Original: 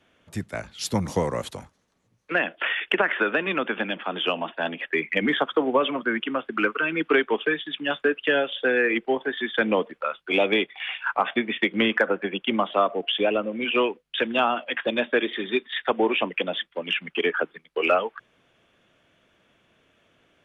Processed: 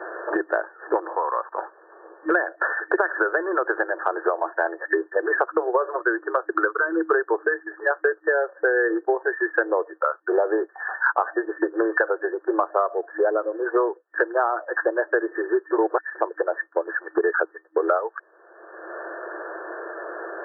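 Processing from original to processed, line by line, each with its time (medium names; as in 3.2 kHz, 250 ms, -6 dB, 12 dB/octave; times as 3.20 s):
1.15–1.58 s: band-pass filter 1.1 kHz, Q 2.7
15.71–16.15 s: reverse
whole clip: FFT band-pass 320–1800 Hz; three bands compressed up and down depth 100%; trim +2.5 dB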